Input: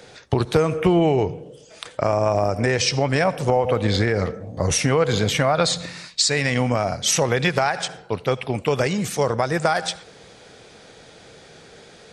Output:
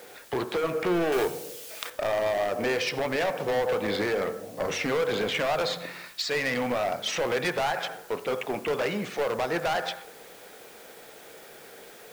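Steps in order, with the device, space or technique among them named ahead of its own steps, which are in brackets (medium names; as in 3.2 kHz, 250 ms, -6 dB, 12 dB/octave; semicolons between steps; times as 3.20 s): aircraft radio (band-pass 310–2600 Hz; hard clipper -22.5 dBFS, distortion -7 dB; white noise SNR 24 dB); de-hum 46.68 Hz, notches 39; 1.12–1.90 s: treble shelf 2 kHz +10.5 dB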